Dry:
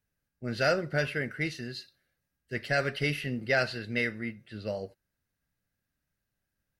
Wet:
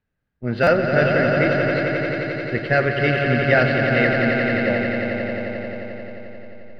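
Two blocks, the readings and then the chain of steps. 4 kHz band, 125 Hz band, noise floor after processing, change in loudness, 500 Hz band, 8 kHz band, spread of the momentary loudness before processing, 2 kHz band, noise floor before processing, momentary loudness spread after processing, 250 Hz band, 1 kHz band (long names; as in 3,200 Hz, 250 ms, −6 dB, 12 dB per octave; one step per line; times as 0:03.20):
+6.0 dB, +13.5 dB, −76 dBFS, +12.0 dB, +14.0 dB, can't be measured, 12 LU, +12.0 dB, −85 dBFS, 14 LU, +14.5 dB, +13.5 dB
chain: high-shelf EQ 7,500 Hz +5 dB
mains-hum notches 50/100/150 Hz
in parallel at −4.5 dB: slack as between gear wheels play −32 dBFS
on the sum: high-frequency loss of the air 340 metres
echo that builds up and dies away 88 ms, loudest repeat 5, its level −7.5 dB
buffer that repeats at 0:00.63, samples 256, times 6
level +7 dB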